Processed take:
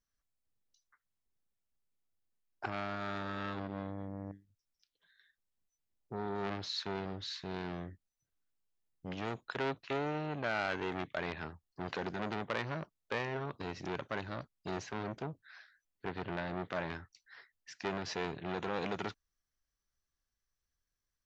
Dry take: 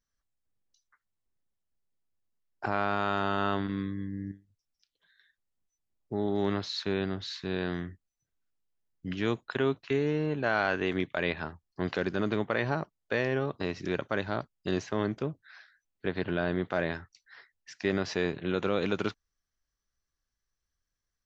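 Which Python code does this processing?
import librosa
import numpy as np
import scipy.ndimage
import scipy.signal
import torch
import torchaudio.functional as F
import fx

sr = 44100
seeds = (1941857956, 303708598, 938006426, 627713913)

y = fx.transformer_sat(x, sr, knee_hz=1900.0)
y = y * 10.0 ** (-3.0 / 20.0)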